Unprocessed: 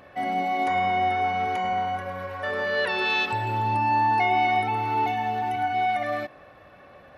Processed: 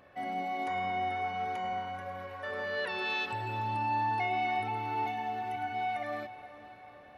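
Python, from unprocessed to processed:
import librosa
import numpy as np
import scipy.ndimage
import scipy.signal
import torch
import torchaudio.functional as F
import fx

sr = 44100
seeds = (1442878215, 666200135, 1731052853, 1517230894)

y = fx.echo_diffused(x, sr, ms=474, feedback_pct=57, wet_db=-15)
y = y * librosa.db_to_amplitude(-9.0)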